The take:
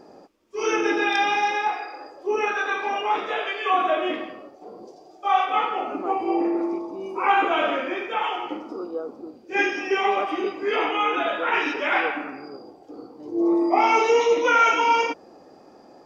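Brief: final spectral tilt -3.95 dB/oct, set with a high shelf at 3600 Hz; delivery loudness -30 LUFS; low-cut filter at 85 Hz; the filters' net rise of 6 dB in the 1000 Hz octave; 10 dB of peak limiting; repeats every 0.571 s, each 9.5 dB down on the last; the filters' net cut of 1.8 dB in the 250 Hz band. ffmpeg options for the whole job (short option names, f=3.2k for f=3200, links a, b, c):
-af "highpass=85,equalizer=f=250:t=o:g=-4,equalizer=f=1k:t=o:g=7.5,highshelf=f=3.6k:g=7.5,alimiter=limit=-12.5dB:level=0:latency=1,aecho=1:1:571|1142|1713|2284:0.335|0.111|0.0365|0.012,volume=-8dB"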